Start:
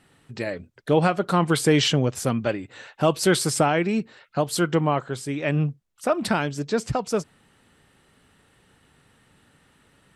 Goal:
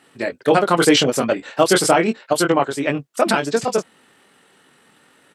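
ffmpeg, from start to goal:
-filter_complex "[0:a]highpass=260,asplit=2[s0][s1];[s1]adelay=36,volume=0.562[s2];[s0][s2]amix=inputs=2:normalize=0,atempo=1.9,volume=2.11"

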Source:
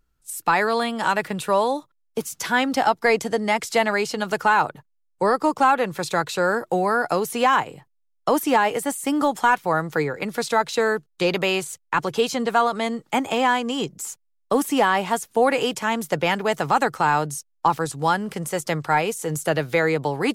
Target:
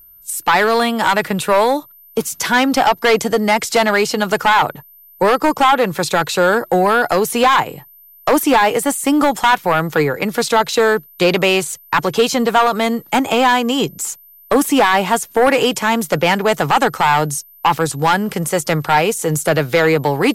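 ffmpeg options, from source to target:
-af "aeval=exprs='val(0)+0.00282*sin(2*PI*13000*n/s)':c=same,aeval=exprs='0.447*sin(PI/2*1.78*val(0)/0.447)':c=same"

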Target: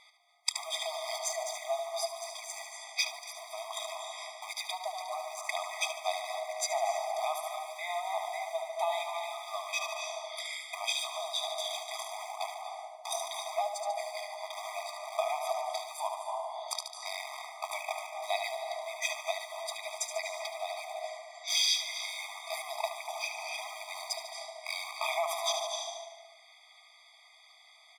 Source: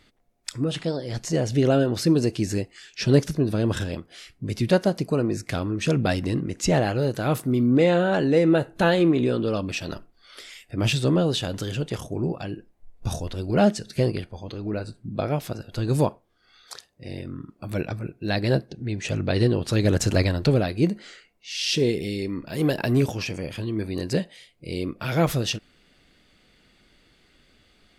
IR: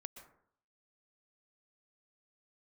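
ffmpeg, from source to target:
-filter_complex "[0:a]asplit=2[s0][s1];[s1]acrusher=bits=4:mix=0:aa=0.000001,volume=0.501[s2];[s0][s2]amix=inputs=2:normalize=0,aecho=1:1:73|146|219|292|365|438|511:0.422|0.232|0.128|0.0702|0.0386|0.0212|0.0117[s3];[1:a]atrim=start_sample=2205,asetrate=22050,aresample=44100[s4];[s3][s4]afir=irnorm=-1:irlink=0,acompressor=threshold=0.0398:ratio=6,afftfilt=real='re*eq(mod(floor(b*sr/1024/640),2),1)':imag='im*eq(mod(floor(b*sr/1024/640),2),1)':win_size=1024:overlap=0.75,volume=2.24"

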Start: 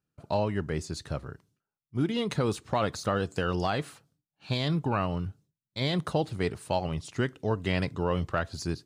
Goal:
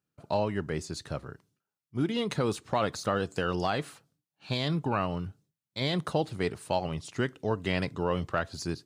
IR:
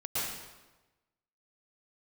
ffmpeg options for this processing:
-af "highpass=f=120:p=1"

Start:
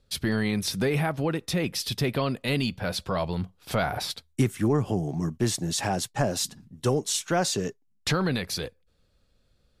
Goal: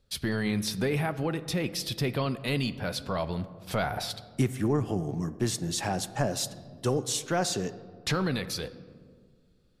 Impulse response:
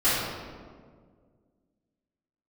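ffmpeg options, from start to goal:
-filter_complex "[0:a]asplit=2[s0][s1];[s1]highshelf=f=5000:g=-8[s2];[1:a]atrim=start_sample=2205,adelay=11[s3];[s2][s3]afir=irnorm=-1:irlink=0,volume=0.0376[s4];[s0][s4]amix=inputs=2:normalize=0,volume=0.708"

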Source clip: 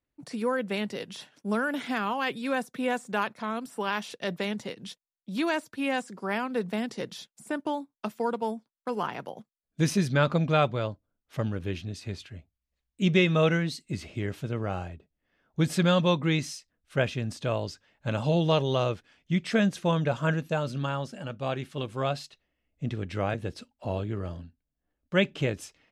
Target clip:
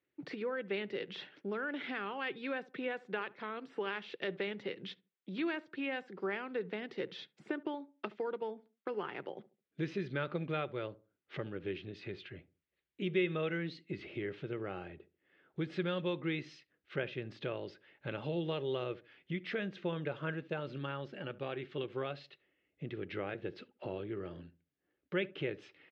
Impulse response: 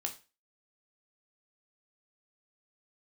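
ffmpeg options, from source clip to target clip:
-filter_complex "[0:a]acompressor=threshold=0.00891:ratio=2.5,highpass=180,equalizer=f=230:t=q:w=4:g=-9,equalizer=f=370:t=q:w=4:g=7,equalizer=f=680:t=q:w=4:g=-7,equalizer=f=1000:t=q:w=4:g=-7,equalizer=f=2000:t=q:w=4:g=3,lowpass=f=3500:w=0.5412,lowpass=f=3500:w=1.3066,asplit=2[s0][s1];[s1]adelay=71,lowpass=f=840:p=1,volume=0.133,asplit=2[s2][s3];[s3]adelay=71,lowpass=f=840:p=1,volume=0.34,asplit=2[s4][s5];[s5]adelay=71,lowpass=f=840:p=1,volume=0.34[s6];[s2][s4][s6]amix=inputs=3:normalize=0[s7];[s0][s7]amix=inputs=2:normalize=0,volume=1.41"

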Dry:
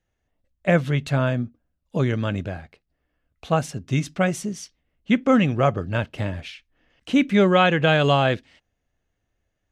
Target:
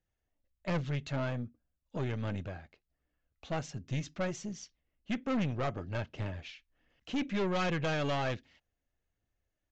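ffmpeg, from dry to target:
-af "aphaser=in_gain=1:out_gain=1:delay=3.7:decay=0.27:speed=1.3:type=triangular,aeval=exprs='(tanh(8.91*val(0)+0.35)-tanh(0.35))/8.91':c=same,aresample=16000,aresample=44100,volume=0.355"

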